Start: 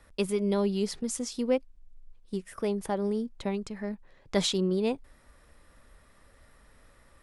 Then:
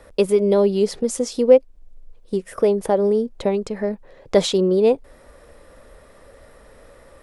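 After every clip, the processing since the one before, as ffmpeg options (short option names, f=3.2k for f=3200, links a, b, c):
-filter_complex "[0:a]asplit=2[a][b];[b]acompressor=threshold=-35dB:ratio=6,volume=-0.5dB[c];[a][c]amix=inputs=2:normalize=0,equalizer=f=510:t=o:w=1.1:g=12,volume=2dB"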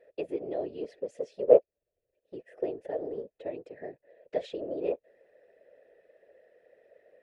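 -filter_complex "[0:a]asplit=3[a][b][c];[a]bandpass=f=530:t=q:w=8,volume=0dB[d];[b]bandpass=f=1.84k:t=q:w=8,volume=-6dB[e];[c]bandpass=f=2.48k:t=q:w=8,volume=-9dB[f];[d][e][f]amix=inputs=3:normalize=0,afftfilt=real='hypot(re,im)*cos(2*PI*random(0))':imag='hypot(re,im)*sin(2*PI*random(1))':win_size=512:overlap=0.75"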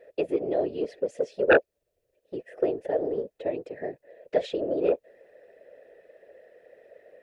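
-af "aeval=exprs='0.596*sin(PI/2*3.55*val(0)/0.596)':c=same,volume=-7.5dB"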